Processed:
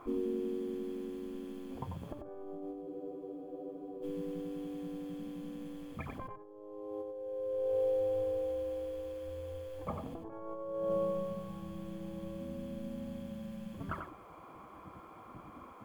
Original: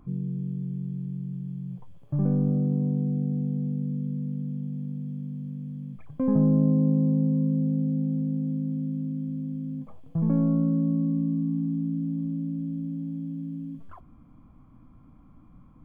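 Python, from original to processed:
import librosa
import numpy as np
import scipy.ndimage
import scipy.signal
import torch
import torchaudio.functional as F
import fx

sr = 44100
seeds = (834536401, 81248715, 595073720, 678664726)

y = fx.spec_gate(x, sr, threshold_db=-15, keep='weak')
y = fx.over_compress(y, sr, threshold_db=-47.0, ratio=-0.5)
y = y + 10.0 ** (-6.0 / 20.0) * np.pad(y, (int(92 * sr / 1000.0), 0))[:len(y)]
y = fx.spec_freeze(y, sr, seeds[0], at_s=2.88, hold_s=1.14)
y = y * librosa.db_to_amplitude(10.0)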